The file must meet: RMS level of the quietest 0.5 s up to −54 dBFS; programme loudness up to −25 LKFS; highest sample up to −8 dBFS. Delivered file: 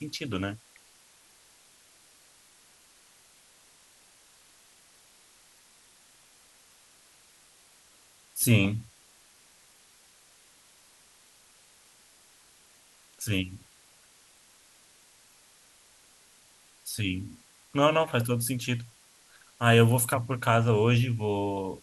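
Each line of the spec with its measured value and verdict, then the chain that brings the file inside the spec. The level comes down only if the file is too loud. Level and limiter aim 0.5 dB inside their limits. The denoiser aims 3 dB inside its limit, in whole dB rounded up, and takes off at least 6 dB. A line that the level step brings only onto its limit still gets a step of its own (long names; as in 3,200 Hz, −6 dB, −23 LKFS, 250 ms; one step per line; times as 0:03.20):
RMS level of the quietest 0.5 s −59 dBFS: in spec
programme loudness −26.5 LKFS: in spec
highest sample −7.0 dBFS: out of spec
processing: brickwall limiter −8.5 dBFS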